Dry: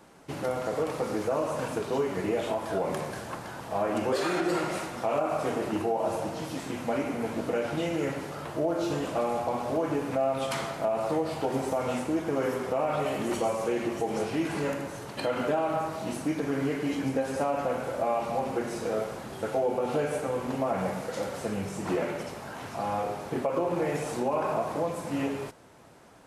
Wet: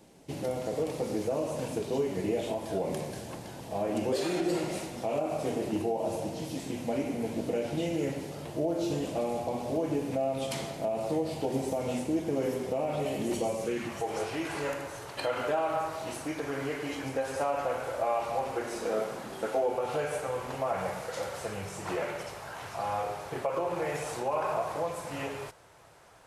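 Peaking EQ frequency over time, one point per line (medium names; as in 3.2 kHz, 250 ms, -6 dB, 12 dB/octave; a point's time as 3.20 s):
peaking EQ -13.5 dB 1.1 oct
13.59 s 1.3 kHz
14.08 s 210 Hz
18.58 s 210 Hz
19.18 s 66 Hz
19.85 s 240 Hz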